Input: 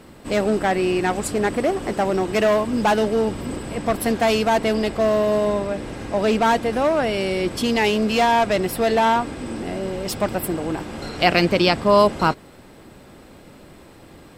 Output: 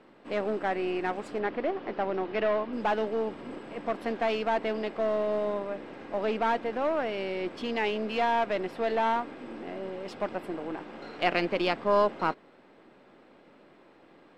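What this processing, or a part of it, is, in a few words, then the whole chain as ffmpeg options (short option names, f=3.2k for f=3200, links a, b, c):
crystal radio: -filter_complex "[0:a]highpass=260,lowpass=2.9k,aeval=exprs='if(lt(val(0),0),0.708*val(0),val(0))':c=same,asettb=1/sr,asplit=3[a][b][c];[a]atrim=end=1.394[d];[b]atrim=start=1.39:end=2.73,asetpts=PTS-STARTPTS,afade=t=in:d=0.004:c=qsin,afade=t=out:st=1.336:d=0.004:c=qsin,lowpass=f=5.1k:w=0.5412,lowpass=f=5.1k:w=1.3066[e];[c]atrim=start=2.726[f];[d][e]acrossfade=d=0.004:c1=hsin:c2=qsin[g];[g][f]acrossfade=d=0.004:c1=qsin:c2=hsin,volume=-7.5dB"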